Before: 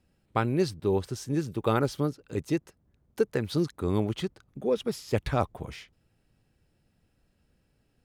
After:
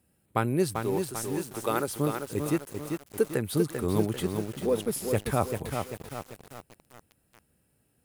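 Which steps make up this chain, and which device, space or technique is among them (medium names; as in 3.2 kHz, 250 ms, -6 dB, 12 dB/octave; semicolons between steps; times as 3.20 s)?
0.81–1.88 s: high-pass 490 Hz 6 dB/octave; budget condenser microphone (high-pass 73 Hz 12 dB/octave; resonant high shelf 7.4 kHz +11.5 dB, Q 1.5); bit-crushed delay 393 ms, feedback 55%, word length 7-bit, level -5 dB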